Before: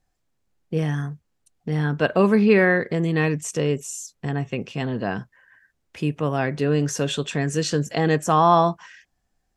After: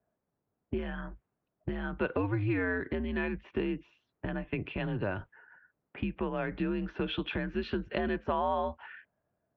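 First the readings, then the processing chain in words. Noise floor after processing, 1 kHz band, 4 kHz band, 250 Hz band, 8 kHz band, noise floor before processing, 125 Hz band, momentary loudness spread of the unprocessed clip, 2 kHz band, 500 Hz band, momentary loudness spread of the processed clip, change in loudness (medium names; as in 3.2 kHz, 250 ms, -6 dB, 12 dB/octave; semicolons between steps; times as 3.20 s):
-85 dBFS, -14.0 dB, -11.5 dB, -10.5 dB, under -40 dB, -73 dBFS, -13.5 dB, 13 LU, -10.5 dB, -12.5 dB, 12 LU, -12.0 dB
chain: compression 6:1, threshold -29 dBFS, peak gain reduction 16.5 dB; mistuned SSB -100 Hz 200–3500 Hz; level-controlled noise filter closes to 1 kHz, open at -28.5 dBFS; trim +1.5 dB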